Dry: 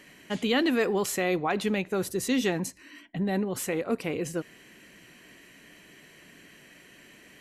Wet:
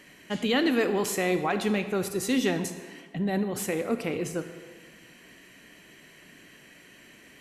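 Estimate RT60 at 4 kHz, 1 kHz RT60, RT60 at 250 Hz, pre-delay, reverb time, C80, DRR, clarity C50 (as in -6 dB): 1.1 s, 1.6 s, 1.5 s, 28 ms, 1.6 s, 11.0 dB, 9.0 dB, 10.0 dB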